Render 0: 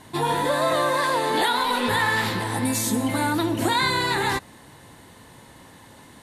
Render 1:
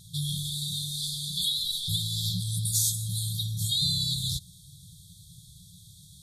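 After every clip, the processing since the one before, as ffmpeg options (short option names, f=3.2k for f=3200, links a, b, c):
-af "afftfilt=real='re*(1-between(b*sr/4096,190,3200))':imag='im*(1-between(b*sr/4096,190,3200))':win_size=4096:overlap=0.75,volume=1.5dB"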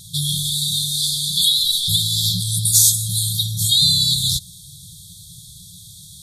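-af "highshelf=f=2.1k:g=7,volume=6.5dB"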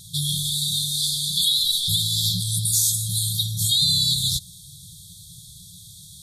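-af "alimiter=level_in=6dB:limit=-1dB:release=50:level=0:latency=1,volume=-9dB"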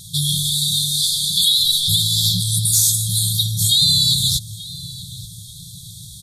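-filter_complex "[0:a]asplit=2[a][b];[b]adelay=884,lowpass=f=2k:p=1,volume=-13dB,asplit=2[c][d];[d]adelay=884,lowpass=f=2k:p=1,volume=0.51,asplit=2[e][f];[f]adelay=884,lowpass=f=2k:p=1,volume=0.51,asplit=2[g][h];[h]adelay=884,lowpass=f=2k:p=1,volume=0.51,asplit=2[i][j];[j]adelay=884,lowpass=f=2k:p=1,volume=0.51[k];[a][c][e][g][i][k]amix=inputs=6:normalize=0,acontrast=28"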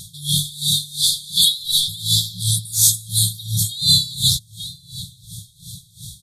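-af "aeval=exprs='val(0)*pow(10,-21*(0.5-0.5*cos(2*PI*2.8*n/s))/20)':c=same,volume=3.5dB"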